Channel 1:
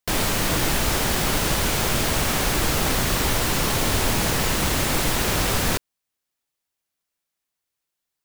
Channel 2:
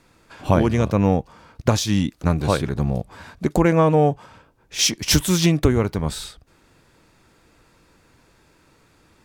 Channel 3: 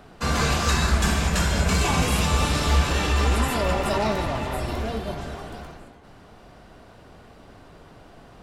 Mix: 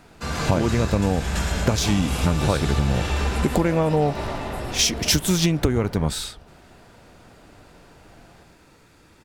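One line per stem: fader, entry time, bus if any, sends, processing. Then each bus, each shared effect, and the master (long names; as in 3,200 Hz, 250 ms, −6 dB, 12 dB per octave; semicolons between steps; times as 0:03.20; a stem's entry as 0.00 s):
−12.0 dB, 0.30 s, no send, no echo send, low-pass filter 1,100 Hz
+3.0 dB, 0.00 s, no send, no echo send, no processing
−4.5 dB, 0.00 s, no send, echo send −5.5 dB, no processing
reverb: not used
echo: repeating echo 111 ms, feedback 59%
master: notch filter 1,100 Hz, Q 17; downward compressor 6 to 1, threshold −16 dBFS, peak gain reduction 8.5 dB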